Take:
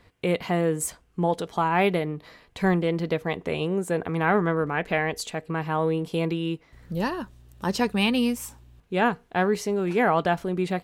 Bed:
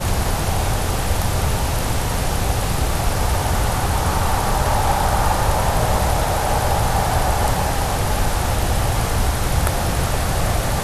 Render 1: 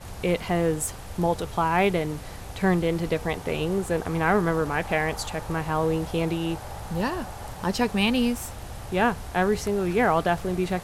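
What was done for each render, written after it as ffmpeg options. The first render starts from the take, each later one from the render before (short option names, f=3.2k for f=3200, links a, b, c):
-filter_complex "[1:a]volume=-19dB[a];[0:a][a]amix=inputs=2:normalize=0"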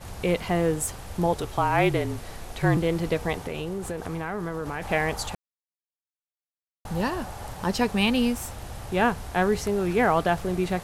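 -filter_complex "[0:a]asettb=1/sr,asplit=3[a][b][c];[a]atrim=end=1.334[d];[b]atrim=start=1.33:end=2.77,asetpts=PTS-STARTPTS,afade=t=in:d=0.004:c=qsin,afade=t=out:st=1.436:d=0.004:c=qsin,afreqshift=-38[e];[c]atrim=start=2.766[f];[d][e]acrossfade=d=0.004:c1=hsin:c2=qsin[g];[g][f]acrossfade=d=0.004:c1=qsin:c2=hsin,asplit=3[h][i][j];[h]afade=t=out:st=3.4:d=0.02[k];[i]acompressor=threshold=-27dB:ratio=6:attack=3.2:release=140:knee=1:detection=peak,afade=t=in:st=3.4:d=0.02,afade=t=out:st=4.81:d=0.02[l];[j]afade=t=in:st=4.81:d=0.02[m];[k][l][m]amix=inputs=3:normalize=0,asplit=3[n][o][p];[n]atrim=end=5.35,asetpts=PTS-STARTPTS,afade=t=out:st=5.346:d=0.004:c=hsin[q];[o]atrim=start=5.35:end=6.85,asetpts=PTS-STARTPTS,volume=0[r];[p]atrim=start=6.85,asetpts=PTS-STARTPTS,afade=t=in:d=0.004:c=hsin[s];[q][r][s]concat=n=3:v=0:a=1"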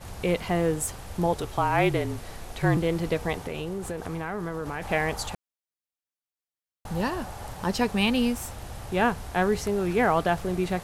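-af "volume=-1dB"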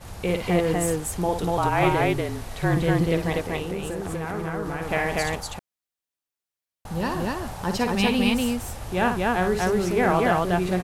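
-af "aecho=1:1:55.39|242:0.447|0.891"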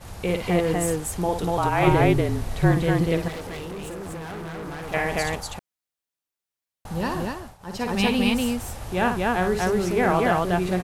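-filter_complex "[0:a]asettb=1/sr,asplit=3[a][b][c];[a]atrim=end=1.874[d];[b]atrim=start=1.87:end=2.72,asetpts=PTS-STARTPTS,afade=t=in:d=0.004:c=qsin,afade=t=out:st=0.846:d=0.004:c=qsin,lowshelf=f=400:g=7.5[e];[c]atrim=start=2.716[f];[d][e]acrossfade=d=0.004:c1=hsin:c2=qsin[g];[g][f]acrossfade=d=0.004:c1=qsin:c2=hsin,asettb=1/sr,asplit=3[h][i][j];[h]atrim=end=3.284[k];[i]atrim=start=3.28:end=4.94,asetpts=PTS-STARTPTS,afade=t=in:d=0.004:c=qsin,afade=t=out:st=1.656:d=0.004:c=qsin,volume=31.5dB,asoftclip=hard,volume=-31.5dB[l];[j]atrim=start=4.936[m];[k][l]acrossfade=d=0.004:c1=hsin:c2=qsin[n];[n][m]acrossfade=d=0.004:c1=qsin:c2=hsin,asplit=3[o][p][q];[o]atrim=end=7.58,asetpts=PTS-STARTPTS,afade=t=out:st=7.18:d=0.4:silence=0.11885[r];[p]atrim=start=7.58:end=7.59,asetpts=PTS-STARTPTS,volume=-18.5dB[s];[q]atrim=start=7.59,asetpts=PTS-STARTPTS,afade=t=in:d=0.4:silence=0.11885[t];[r][s][t]concat=n=3:v=0:a=1"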